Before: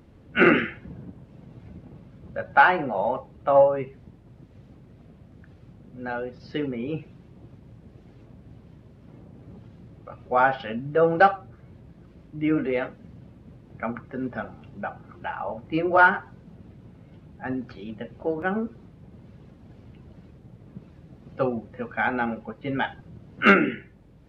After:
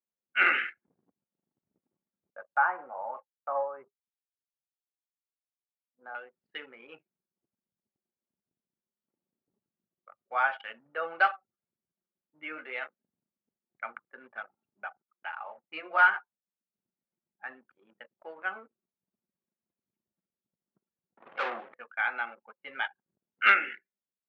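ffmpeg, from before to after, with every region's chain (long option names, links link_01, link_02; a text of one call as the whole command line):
ffmpeg -i in.wav -filter_complex "[0:a]asettb=1/sr,asplit=3[link_01][link_02][link_03];[link_01]atrim=end=2.304[link_04];[link_02]atrim=start=2.3:end=6.15,asetpts=PTS-STARTPTS,afade=type=in:duration=0.004:curve=qsin,afade=type=out:start_time=3.846:duration=0.004:curve=qsin,lowpass=frequency=1300:width=0.5412,lowpass=frequency=1300:width=1.3066,agate=range=-33dB:threshold=-38dB:ratio=3:release=100:detection=peak[link_05];[link_03]atrim=start=6.146[link_06];[link_04][link_05]acrossfade=duration=0.004:curve1=hsin:curve2=qsin[link_07];[link_07][link_06]acrossfade=duration=0.004:curve1=qsin:curve2=hsin,asettb=1/sr,asplit=3[link_08][link_09][link_10];[link_08]atrim=end=15.024[link_11];[link_09]atrim=start=15.02:end=16.74,asetpts=PTS-STARTPTS,afade=type=in:duration=0.004:curve=qsin,afade=type=out:start_time=1.716:duration=0.004:curve=qsin,bandreject=frequency=84.24:width_type=h:width=4,bandreject=frequency=168.48:width_type=h:width=4,bandreject=frequency=252.72:width_type=h:width=4,bandreject=frequency=336.96:width_type=h:width=4,bandreject=frequency=421.2:width_type=h:width=4,bandreject=frequency=505.44:width_type=h:width=4,bandreject=frequency=589.68:width_type=h:width=4,bandreject=frequency=673.92:width_type=h:width=4,bandreject=frequency=758.16:width_type=h:width=4,agate=range=-33dB:threshold=-41dB:ratio=3:release=100:detection=peak[link_12];[link_10]atrim=start=16.736[link_13];[link_11][link_12]acrossfade=duration=0.004:curve1=hsin:curve2=qsin[link_14];[link_14][link_13]acrossfade=duration=0.004:curve1=qsin:curve2=hsin,asettb=1/sr,asplit=3[link_15][link_16][link_17];[link_15]atrim=end=21.174[link_18];[link_16]atrim=start=21.17:end=21.74,asetpts=PTS-STARTPTS,afade=type=in:duration=0.004:curve=qsin,afade=type=out:start_time=0.566:duration=0.004:curve=qsin,equalizer=frequency=3400:width_type=o:width=0.4:gain=5,asplit=2[link_19][link_20];[link_20]highpass=frequency=720:poles=1,volume=30dB,asoftclip=type=tanh:threshold=-11dB[link_21];[link_19][link_21]amix=inputs=2:normalize=0,lowpass=frequency=1200:poles=1,volume=-6dB[link_22];[link_17]atrim=start=21.736[link_23];[link_18][link_22]acrossfade=duration=0.004:curve1=hsin:curve2=qsin[link_24];[link_24][link_23]acrossfade=duration=0.004:curve1=qsin:curve2=hsin,lowpass=3300,anlmdn=3.98,highpass=1400" out.wav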